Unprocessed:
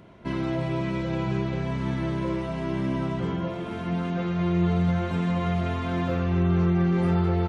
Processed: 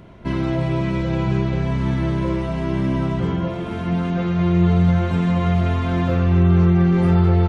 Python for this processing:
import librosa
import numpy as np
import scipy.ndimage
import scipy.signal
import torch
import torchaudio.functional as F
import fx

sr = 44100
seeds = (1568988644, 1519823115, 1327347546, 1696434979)

y = fx.low_shelf(x, sr, hz=84.0, db=11.5)
y = F.gain(torch.from_numpy(y), 4.5).numpy()